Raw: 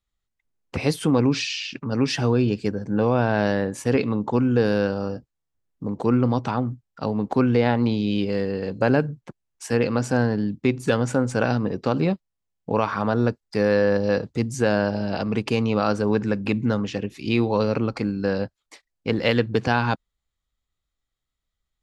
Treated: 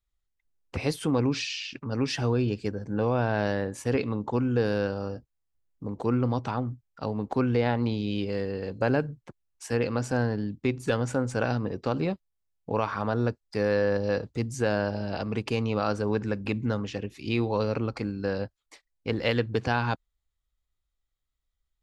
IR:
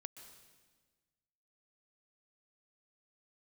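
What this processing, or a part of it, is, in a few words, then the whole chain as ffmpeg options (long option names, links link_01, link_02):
low shelf boost with a cut just above: -af "lowshelf=frequency=98:gain=7.5,equalizer=frequency=180:width_type=o:width=1.1:gain=-4.5,volume=-5dB"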